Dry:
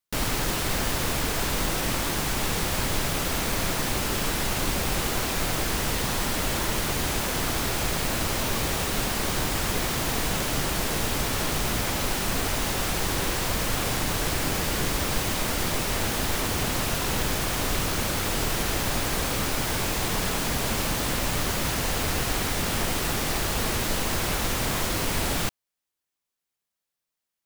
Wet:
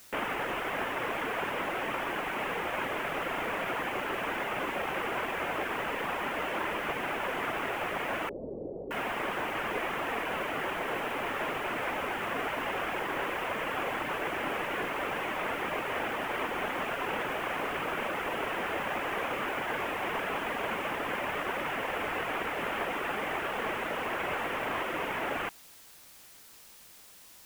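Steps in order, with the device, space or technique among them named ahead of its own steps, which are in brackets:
reverb reduction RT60 0.69 s
army field radio (band-pass filter 400–2,800 Hz; variable-slope delta modulation 16 kbit/s; white noise bed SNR 20 dB)
0:08.29–0:08.91: Butterworth low-pass 550 Hz 36 dB per octave
level +1.5 dB

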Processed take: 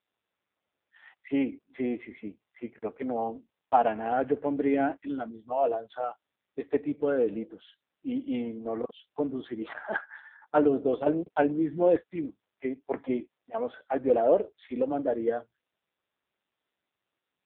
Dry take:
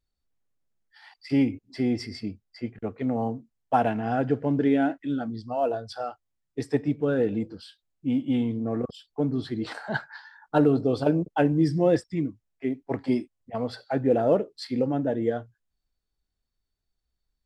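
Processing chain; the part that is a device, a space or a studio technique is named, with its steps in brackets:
telephone (band-pass filter 370–3,500 Hz; level +1.5 dB; AMR narrowband 5.9 kbit/s 8,000 Hz)

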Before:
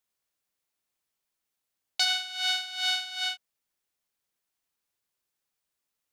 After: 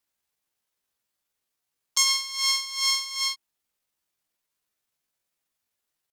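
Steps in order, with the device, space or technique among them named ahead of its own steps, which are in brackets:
chipmunk voice (pitch shifter +6.5 semitones)
level +4 dB

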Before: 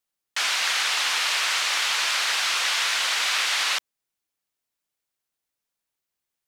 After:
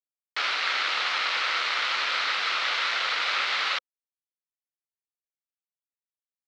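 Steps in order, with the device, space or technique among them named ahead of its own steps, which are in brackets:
hand-held game console (bit reduction 4 bits; loudspeaker in its box 440–4,500 Hz, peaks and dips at 520 Hz +5 dB, 1,300 Hz +8 dB, 2,100 Hz +4 dB, 4,100 Hz +3 dB)
level −5 dB

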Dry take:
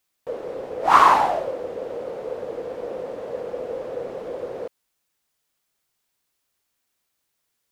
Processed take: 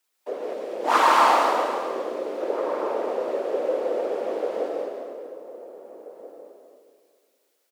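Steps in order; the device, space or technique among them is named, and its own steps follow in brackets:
whispering ghost (random phases in short frames; high-pass filter 270 Hz 24 dB per octave; convolution reverb RT60 2.0 s, pre-delay 119 ms, DRR −2.5 dB)
0:00.53–0:02.41: parametric band 970 Hz −6 dB 2 octaves
slap from a distant wall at 280 metres, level −14 dB

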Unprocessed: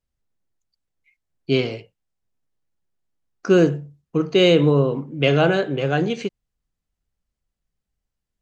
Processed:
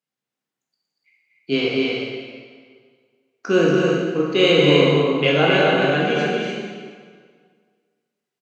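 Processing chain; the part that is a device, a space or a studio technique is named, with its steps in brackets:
stadium PA (high-pass filter 160 Hz 24 dB per octave; parametric band 2,100 Hz +5 dB 2.4 octaves; loudspeakers that aren't time-aligned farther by 81 metres −5 dB, 99 metres −6 dB; convolution reverb RT60 1.8 s, pre-delay 14 ms, DRR −2.5 dB)
level −5 dB

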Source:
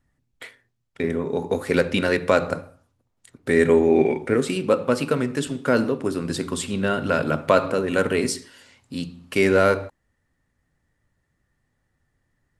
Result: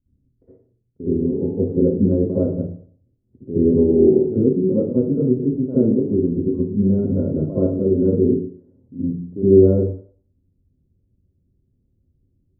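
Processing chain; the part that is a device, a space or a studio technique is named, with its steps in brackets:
next room (low-pass filter 370 Hz 24 dB per octave; convolution reverb RT60 0.45 s, pre-delay 55 ms, DRR −12.5 dB)
level −4.5 dB

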